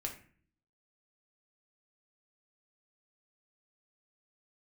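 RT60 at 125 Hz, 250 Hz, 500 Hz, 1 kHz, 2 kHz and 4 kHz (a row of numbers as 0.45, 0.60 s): 0.80, 0.80, 0.50, 0.45, 0.50, 0.35 s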